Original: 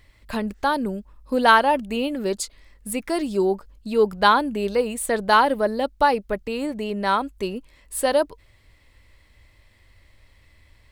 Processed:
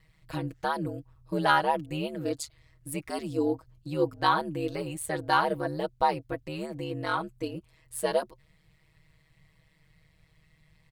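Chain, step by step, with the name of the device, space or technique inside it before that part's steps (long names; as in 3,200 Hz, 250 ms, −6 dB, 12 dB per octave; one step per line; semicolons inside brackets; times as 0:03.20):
ring-modulated robot voice (ring modulation 75 Hz; comb filter 6.3 ms, depth 71%)
level −7 dB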